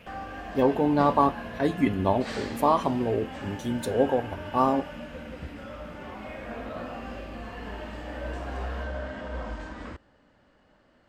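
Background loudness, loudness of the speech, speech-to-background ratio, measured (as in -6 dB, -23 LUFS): -38.0 LUFS, -26.0 LUFS, 12.0 dB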